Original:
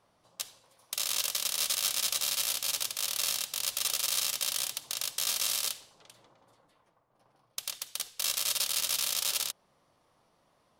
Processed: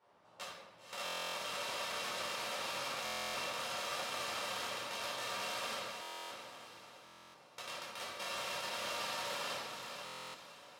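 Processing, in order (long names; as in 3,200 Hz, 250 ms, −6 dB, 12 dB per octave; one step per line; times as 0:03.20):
spectral envelope flattened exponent 0.6
rectangular room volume 470 cubic metres, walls mixed, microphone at 4.5 metres
brickwall limiter −16 dBFS, peak gain reduction 7.5 dB
resonant band-pass 740 Hz, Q 0.65
feedback delay with all-pass diffusion 520 ms, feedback 42%, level −6 dB
buffer that repeats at 0:01.04/0:03.04/0:06.01/0:07.04/0:10.04, samples 1,024, times 12
level −5 dB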